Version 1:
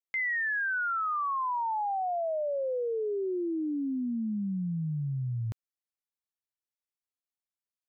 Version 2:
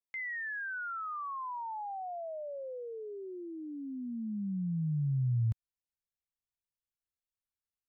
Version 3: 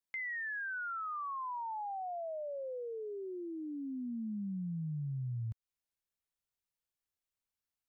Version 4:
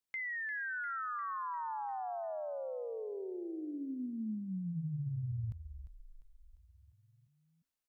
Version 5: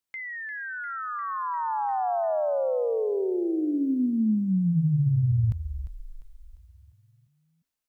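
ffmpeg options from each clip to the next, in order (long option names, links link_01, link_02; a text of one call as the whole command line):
ffmpeg -i in.wav -af "asubboost=boost=7.5:cutoff=130,volume=-8dB" out.wav
ffmpeg -i in.wav -af "acompressor=threshold=-38dB:ratio=6,volume=1dB" out.wav
ffmpeg -i in.wav -filter_complex "[0:a]asplit=7[link_01][link_02][link_03][link_04][link_05][link_06][link_07];[link_02]adelay=349,afreqshift=-46,volume=-11dB[link_08];[link_03]adelay=698,afreqshift=-92,volume=-16dB[link_09];[link_04]adelay=1047,afreqshift=-138,volume=-21.1dB[link_10];[link_05]adelay=1396,afreqshift=-184,volume=-26.1dB[link_11];[link_06]adelay=1745,afreqshift=-230,volume=-31.1dB[link_12];[link_07]adelay=2094,afreqshift=-276,volume=-36.2dB[link_13];[link_01][link_08][link_09][link_10][link_11][link_12][link_13]amix=inputs=7:normalize=0" out.wav
ffmpeg -i in.wav -af "dynaudnorm=framelen=260:gausssize=13:maxgain=12dB,volume=3dB" out.wav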